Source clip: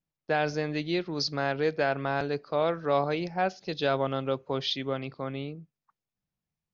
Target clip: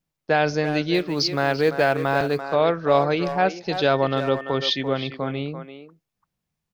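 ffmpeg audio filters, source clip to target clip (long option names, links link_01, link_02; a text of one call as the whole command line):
ffmpeg -i in.wav -filter_complex "[0:a]asettb=1/sr,asplit=3[link_01][link_02][link_03];[link_01]atrim=end=3.914[link_04];[link_02]atrim=start=3.91:end=4.83,asetpts=PTS-STARTPTS,afade=type=in:duration=0.004:curve=qsin,afade=type=out:start_time=0.916:duration=0.004:curve=qsin,aeval=exprs='val(0)+0.00447*sin(2*PI*1800*n/s)':channel_layout=same[link_05];[link_03]atrim=start=4.826[link_06];[link_04][link_05]acrossfade=duration=0.004:curve1=hsin:curve2=qsin[link_07];[link_07][link_06]acrossfade=duration=0.004:curve1=qsin:curve2=hsin,asplit=2[link_08][link_09];[link_09]adelay=340,highpass=300,lowpass=3400,asoftclip=type=hard:threshold=-21dB,volume=-9dB[link_10];[link_08][link_10]amix=inputs=2:normalize=0,asettb=1/sr,asplit=3[link_11][link_12][link_13];[link_11]atrim=end=0.944[link_14];[link_12]atrim=start=0.94:end=2.41,asetpts=PTS-STARTPTS,afade=type=in:duration=0.004:curve=qsin,afade=type=out:start_time=1.466:duration=0.004:curve=qsin,acrusher=bits=8:mode=log:mix=0:aa=0.000001[link_15];[link_13]atrim=start=2.406[link_16];[link_14][link_15]acrossfade=duration=0.004:curve1=hsin:curve2=qsin[link_17];[link_17][link_16]acrossfade=duration=0.004:curve1=qsin:curve2=hsin,volume=7dB" out.wav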